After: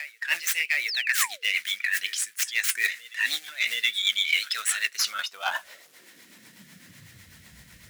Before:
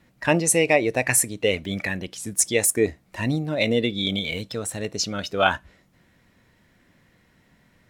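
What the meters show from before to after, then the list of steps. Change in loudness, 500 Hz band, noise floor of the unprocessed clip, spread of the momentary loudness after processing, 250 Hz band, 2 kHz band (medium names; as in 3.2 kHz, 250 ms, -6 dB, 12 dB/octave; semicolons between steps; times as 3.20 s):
-2.5 dB, -27.5 dB, -62 dBFS, 5 LU, under -30 dB, +2.5 dB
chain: tracing distortion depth 0.14 ms; flange 0.85 Hz, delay 2.2 ms, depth 4.2 ms, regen -69%; on a send: reverse echo 720 ms -23.5 dB; on the sum: companded quantiser 6-bit; painted sound fall, 0.88–1.48 s, 340–5800 Hz -32 dBFS; high-pass sweep 1.7 kHz -> 63 Hz, 4.88–7.52 s; reverse; compression 12:1, threshold -36 dBFS, peak gain reduction 22.5 dB; reverse; amplifier tone stack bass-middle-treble 5-5-5; rotary cabinet horn 8 Hz; loudness maximiser +34 dB; trim -8 dB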